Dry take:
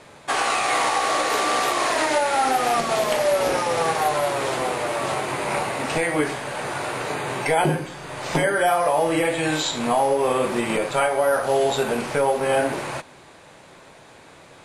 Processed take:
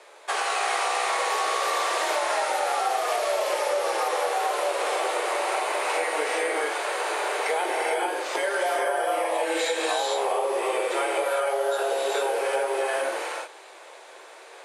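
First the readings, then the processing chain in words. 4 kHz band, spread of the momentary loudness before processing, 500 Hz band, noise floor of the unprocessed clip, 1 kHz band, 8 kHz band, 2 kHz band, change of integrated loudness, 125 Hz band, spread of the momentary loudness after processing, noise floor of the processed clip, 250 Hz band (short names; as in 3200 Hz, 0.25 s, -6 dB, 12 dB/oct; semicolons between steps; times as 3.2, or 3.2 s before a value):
-2.5 dB, 7 LU, -3.5 dB, -47 dBFS, -3.0 dB, -3.0 dB, -2.5 dB, -3.5 dB, under -40 dB, 3 LU, -47 dBFS, -12.0 dB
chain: steep high-pass 370 Hz 48 dB/oct; non-linear reverb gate 0.48 s rising, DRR -3 dB; compressor, threshold -19 dBFS, peak gain reduction 8.5 dB; gain -3 dB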